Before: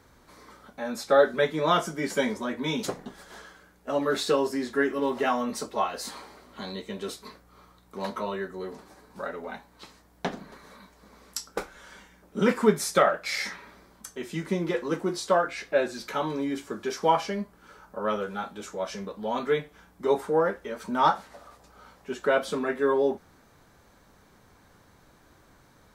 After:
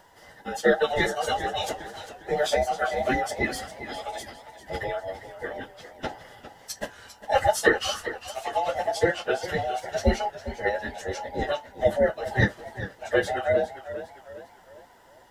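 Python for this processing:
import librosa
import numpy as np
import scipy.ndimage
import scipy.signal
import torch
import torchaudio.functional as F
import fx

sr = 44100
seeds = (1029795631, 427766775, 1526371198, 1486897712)

y = fx.band_invert(x, sr, width_hz=1000)
y = fx.stretch_vocoder_free(y, sr, factor=0.59)
y = fx.echo_warbled(y, sr, ms=402, feedback_pct=43, rate_hz=2.8, cents=94, wet_db=-13)
y = F.gain(torch.from_numpy(y), 4.5).numpy()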